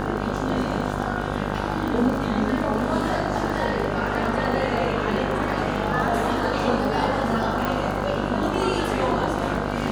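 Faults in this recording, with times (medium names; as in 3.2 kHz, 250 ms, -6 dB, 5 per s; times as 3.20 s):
buzz 50 Hz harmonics 32 -28 dBFS
crackle 21 per s -27 dBFS
7.65 s: pop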